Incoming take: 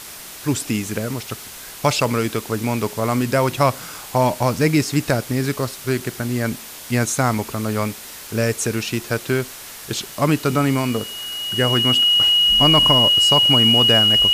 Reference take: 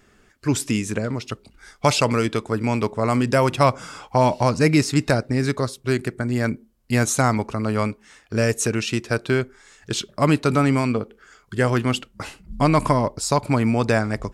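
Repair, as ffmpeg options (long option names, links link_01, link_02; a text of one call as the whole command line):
ffmpeg -i in.wav -af "bandreject=frequency=2900:width=30,afwtdn=0.018" out.wav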